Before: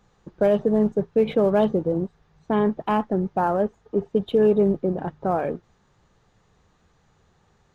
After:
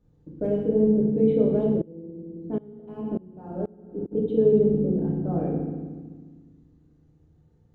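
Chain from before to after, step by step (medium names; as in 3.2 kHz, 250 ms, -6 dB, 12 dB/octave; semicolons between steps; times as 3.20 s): FFT filter 150 Hz 0 dB, 370 Hz -3 dB, 530 Hz -7 dB, 930 Hz -19 dB; FDN reverb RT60 1.4 s, low-frequency decay 1.6×, high-frequency decay 0.9×, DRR -4 dB; 1.76–4.11 s: sawtooth tremolo in dB swelling 1.1 Hz -> 2.7 Hz, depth 25 dB; trim -3.5 dB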